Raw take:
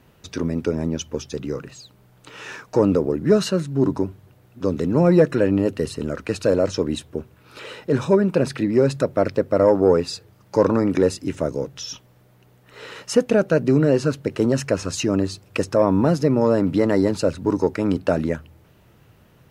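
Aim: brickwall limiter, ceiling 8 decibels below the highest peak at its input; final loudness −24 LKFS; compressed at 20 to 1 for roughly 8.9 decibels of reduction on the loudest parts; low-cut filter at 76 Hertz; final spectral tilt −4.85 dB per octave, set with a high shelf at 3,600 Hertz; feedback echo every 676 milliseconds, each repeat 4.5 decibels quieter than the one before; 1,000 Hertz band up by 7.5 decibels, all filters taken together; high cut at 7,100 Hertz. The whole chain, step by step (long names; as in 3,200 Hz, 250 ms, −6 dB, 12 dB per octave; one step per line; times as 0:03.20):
high-pass filter 76 Hz
low-pass filter 7,100 Hz
parametric band 1,000 Hz +8.5 dB
high-shelf EQ 3,600 Hz +8.5 dB
downward compressor 20 to 1, threshold −17 dBFS
brickwall limiter −15 dBFS
repeating echo 676 ms, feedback 60%, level −4.5 dB
level +1.5 dB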